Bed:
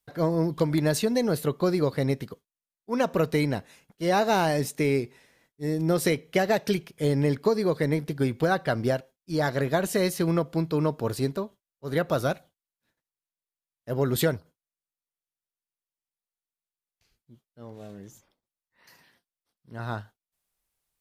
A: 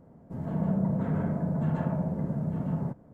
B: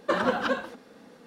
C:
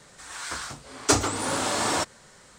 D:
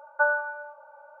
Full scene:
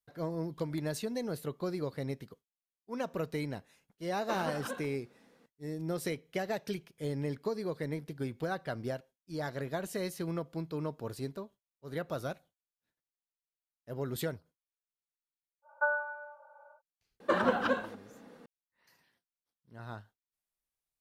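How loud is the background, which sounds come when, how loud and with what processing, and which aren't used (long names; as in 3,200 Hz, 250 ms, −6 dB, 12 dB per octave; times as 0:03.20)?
bed −11.5 dB
0:04.20: mix in B −13 dB
0:15.62: mix in D −7 dB, fades 0.10 s
0:17.20: mix in B −2.5 dB + parametric band 5,500 Hz −5 dB 1.9 octaves
not used: A, C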